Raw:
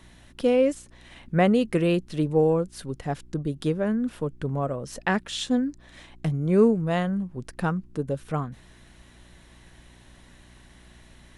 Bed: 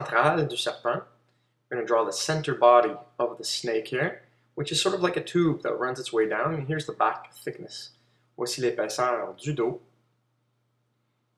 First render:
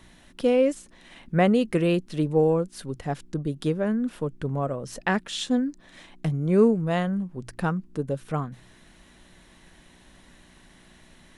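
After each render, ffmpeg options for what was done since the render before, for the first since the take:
-af "bandreject=f=60:t=h:w=4,bandreject=f=120:t=h:w=4"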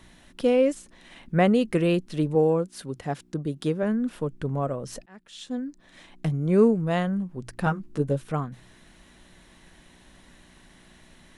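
-filter_complex "[0:a]asettb=1/sr,asplit=3[a][b][c];[a]atrim=end=2.354[d];[b]atrim=start=2.35:end=3.83,asetpts=PTS-STARTPTS,afade=t=in:d=0.004:c=qsin,afade=t=out:st=1.476:d=0.004:c=qsin,highpass=f=100:p=1[e];[c]atrim=start=3.826[f];[d][e]acrossfade=d=0.004:c1=hsin:c2=qsin[g];[g][f]acrossfade=d=0.004:c1=qsin:c2=hsin,asettb=1/sr,asplit=3[h][i][j];[h]atrim=end=7.654[k];[i]atrim=start=7.65:end=8.22,asetpts=PTS-STARTPTS,afade=t=in:d=0.004:c=qsin,afade=t=out:st=0.566:d=0.004:c=qsin,asplit=2[l][m];[m]adelay=14,volume=-2dB[n];[l][n]amix=inputs=2:normalize=0,atrim=end_sample=25137[o];[j]atrim=start=8.216[p];[k][o]acrossfade=d=0.004:c1=hsin:c2=qsin[q];[q][p]acrossfade=d=0.004:c1=qsin:c2=hsin,asplit=2[r][s];[r]atrim=end=5.06,asetpts=PTS-STARTPTS,afade=t=out:st=5.056:d=0.004:c=hsin[t];[s]atrim=start=5.06,asetpts=PTS-STARTPTS,afade=t=in:d=1.21[u];[t][u]concat=n=2:v=0:a=1"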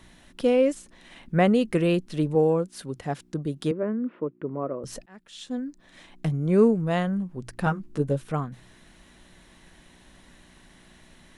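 -filter_complex "[0:a]asettb=1/sr,asplit=3[a][b][c];[a]atrim=end=3.714[d];[b]atrim=start=3.71:end=4.84,asetpts=PTS-STARTPTS,afade=t=in:d=0.004:c=qsin,afade=t=out:st=1.126:d=0.004:c=qsin,highpass=240,equalizer=f=340:t=q:w=4:g=6,equalizer=f=780:t=q:w=4:g=-9,equalizer=f=1.6k:t=q:w=4:g=-8,lowpass=f=2k:w=0.5412,lowpass=f=2k:w=1.3066[e];[c]atrim=start=4.836[f];[d][e]acrossfade=d=0.004:c1=hsin:c2=qsin[g];[g][f]acrossfade=d=0.004:c1=qsin:c2=hsin"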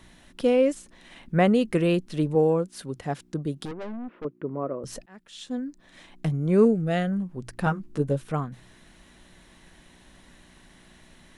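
-filter_complex "[0:a]asettb=1/sr,asplit=3[a][b][c];[a]atrim=end=3.654[d];[b]atrim=start=3.65:end=4.25,asetpts=PTS-STARTPTS,afade=t=in:d=0.004:c=qsin,afade=t=out:st=0.596:d=0.004:c=qsin,aeval=exprs='(tanh(44.7*val(0)+0.4)-tanh(0.4))/44.7':c=same[e];[c]atrim=start=4.246[f];[d][e]acrossfade=d=0.004:c1=hsin:c2=qsin[g];[g][f]acrossfade=d=0.004:c1=qsin:c2=hsin,asettb=1/sr,asplit=3[h][i][j];[h]atrim=end=6.654[k];[i]atrim=start=6.65:end=7.12,asetpts=PTS-STARTPTS,afade=t=in:d=0.004:c=qsin,afade=t=out:st=0.466:d=0.004:c=qsin,asuperstop=centerf=1000:order=4:qfactor=2.4[l];[j]atrim=start=7.116[m];[k][l]acrossfade=d=0.004:c1=hsin:c2=qsin[n];[n][m]acrossfade=d=0.004:c1=qsin:c2=hsin"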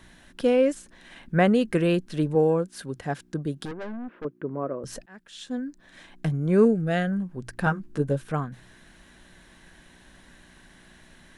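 -af "equalizer=f=1.6k:w=7.3:g=8.5"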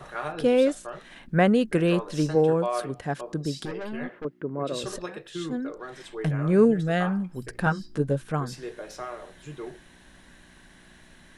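-filter_complex "[1:a]volume=-11.5dB[a];[0:a][a]amix=inputs=2:normalize=0"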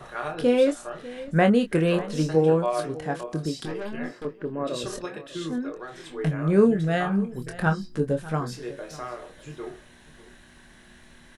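-filter_complex "[0:a]asplit=2[a][b];[b]adelay=25,volume=-7dB[c];[a][c]amix=inputs=2:normalize=0,aecho=1:1:596:0.126"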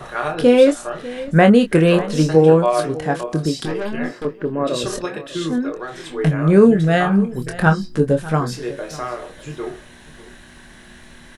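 -af "volume=8.5dB,alimiter=limit=-1dB:level=0:latency=1"

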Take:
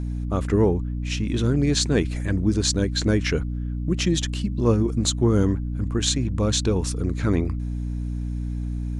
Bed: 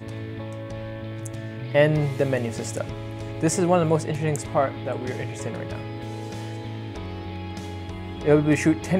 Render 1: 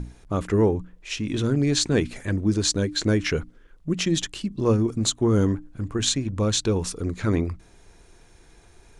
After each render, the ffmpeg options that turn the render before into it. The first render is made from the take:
-af "bandreject=f=60:t=h:w=6,bandreject=f=120:t=h:w=6,bandreject=f=180:t=h:w=6,bandreject=f=240:t=h:w=6,bandreject=f=300:t=h:w=6"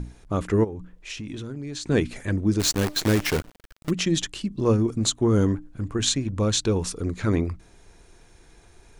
-filter_complex "[0:a]asplit=3[a][b][c];[a]afade=t=out:st=0.63:d=0.02[d];[b]acompressor=threshold=-31dB:ratio=6:attack=3.2:release=140:knee=1:detection=peak,afade=t=in:st=0.63:d=0.02,afade=t=out:st=1.86:d=0.02[e];[c]afade=t=in:st=1.86:d=0.02[f];[d][e][f]amix=inputs=3:normalize=0,asplit=3[g][h][i];[g]afade=t=out:st=2.59:d=0.02[j];[h]acrusher=bits=5:dc=4:mix=0:aa=0.000001,afade=t=in:st=2.59:d=0.02,afade=t=out:st=3.89:d=0.02[k];[i]afade=t=in:st=3.89:d=0.02[l];[j][k][l]amix=inputs=3:normalize=0"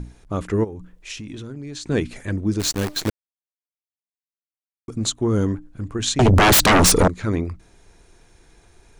-filter_complex "[0:a]asettb=1/sr,asplit=3[a][b][c];[a]atrim=end=0.654[d];[b]atrim=start=0.65:end=1.25,asetpts=PTS-STARTPTS,afade=t=in:d=0.004:c=qsin,afade=t=out:st=0.596:d=0.004:c=qsin,highshelf=f=5.3k:g=6[e];[c]atrim=start=1.246[f];[d][e]acrossfade=d=0.004:c1=hsin:c2=qsin[g];[g][f]acrossfade=d=0.004:c1=qsin:c2=hsin,asettb=1/sr,asplit=3[h][i][j];[h]atrim=end=6.194[k];[i]atrim=start=6.19:end=7.08,asetpts=PTS-STARTPTS,afade=t=in:d=0.004:c=qsin,afade=t=out:st=0.886:d=0.004:c=qsin,aeval=exprs='0.316*sin(PI/2*7.94*val(0)/0.316)':c=same[l];[j]atrim=start=7.076[m];[k][l]acrossfade=d=0.004:c1=hsin:c2=qsin[n];[n][m]acrossfade=d=0.004:c1=qsin:c2=hsin,asplit=3[o][p][q];[o]atrim=end=3.1,asetpts=PTS-STARTPTS,afade=t=out:st=3.096:d=0.004:c=hsin[r];[p]atrim=start=3.1:end=4.88,asetpts=PTS-STARTPTS,volume=0[s];[q]atrim=start=4.88,asetpts=PTS-STARTPTS,afade=t=in:d=0.004:c=hsin[t];[r][s][t]concat=n=3:v=0:a=1"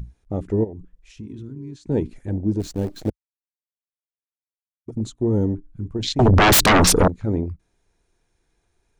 -af "afwtdn=0.0562"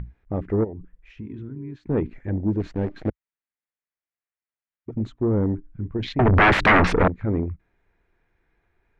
-af "asoftclip=type=tanh:threshold=-13dB,lowpass=f=2k:t=q:w=2"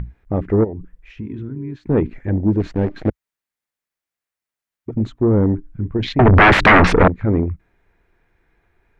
-af "volume=6.5dB,alimiter=limit=-2dB:level=0:latency=1"

